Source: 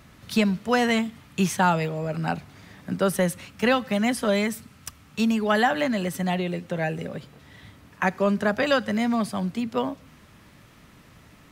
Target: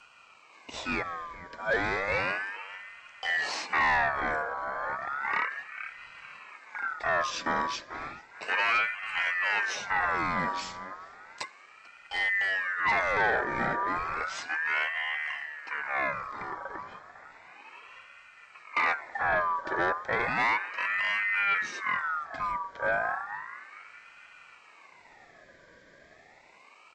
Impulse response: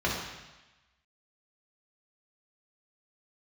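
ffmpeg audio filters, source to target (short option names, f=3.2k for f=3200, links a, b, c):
-filter_complex "[0:a]highpass=f=110:w=0.5412,highpass=f=110:w=1.3066,lowshelf=f=780:t=q:w=3:g=-13.5,acrossover=split=150|750|7300[a][b][c][d];[b]dynaudnorm=f=100:g=21:m=14dB[e];[a][e][c][d]amix=inputs=4:normalize=0,asplit=2[f][g];[g]adelay=189,lowpass=f=1.5k:p=1,volume=-13dB,asplit=2[h][i];[i]adelay=189,lowpass=f=1.5k:p=1,volume=0.32,asplit=2[j][k];[k]adelay=189,lowpass=f=1.5k:p=1,volume=0.32[l];[f][h][j][l]amix=inputs=4:normalize=0,asoftclip=type=tanh:threshold=-19.5dB,asuperstop=centerf=3900:order=8:qfactor=3.4,asetrate=18846,aresample=44100,aeval=exprs='val(0)*sin(2*PI*1500*n/s+1500*0.3/0.33*sin(2*PI*0.33*n/s))':c=same"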